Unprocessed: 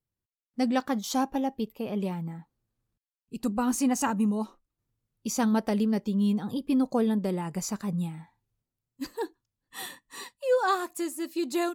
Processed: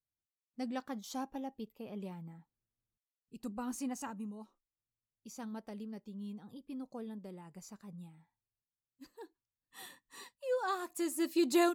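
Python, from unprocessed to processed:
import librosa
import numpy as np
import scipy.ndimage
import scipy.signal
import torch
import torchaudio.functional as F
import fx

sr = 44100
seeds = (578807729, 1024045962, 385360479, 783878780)

y = fx.gain(x, sr, db=fx.line((3.83, -13.0), (4.39, -19.0), (9.12, -19.0), (10.03, -10.0), (10.74, -10.0), (11.21, 0.0)))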